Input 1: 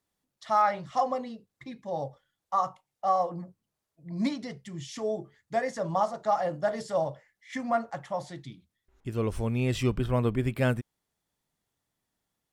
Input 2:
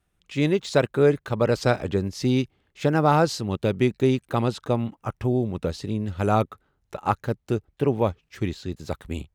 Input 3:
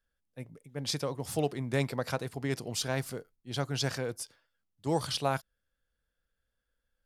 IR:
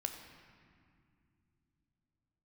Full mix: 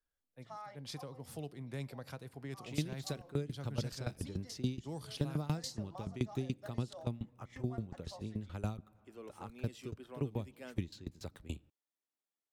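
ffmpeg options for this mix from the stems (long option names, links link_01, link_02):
-filter_complex "[0:a]highpass=frequency=260:width=0.5412,highpass=frequency=260:width=1.3066,volume=-16.5dB[link_01];[1:a]aeval=exprs='val(0)*pow(10,-22*if(lt(mod(7*n/s,1),2*abs(7)/1000),1-mod(7*n/s,1)/(2*abs(7)/1000),(mod(7*n/s,1)-2*abs(7)/1000)/(1-2*abs(7)/1000))/20)':channel_layout=same,adelay=2350,volume=-5.5dB,asplit=2[link_02][link_03];[link_03]volume=-21dB[link_04];[2:a]equalizer=frequency=6700:width_type=o:width=1.5:gain=-5.5,volume=-10.5dB,asplit=3[link_05][link_06][link_07];[link_06]volume=-18dB[link_08];[link_07]apad=whole_len=552269[link_09];[link_01][link_09]sidechaincompress=threshold=-55dB:ratio=8:attack=43:release=142[link_10];[3:a]atrim=start_sample=2205[link_11];[link_04][link_08]amix=inputs=2:normalize=0[link_12];[link_12][link_11]afir=irnorm=-1:irlink=0[link_13];[link_10][link_02][link_05][link_13]amix=inputs=4:normalize=0,acrossover=split=260|3000[link_14][link_15][link_16];[link_15]acompressor=threshold=-48dB:ratio=3[link_17];[link_14][link_17][link_16]amix=inputs=3:normalize=0"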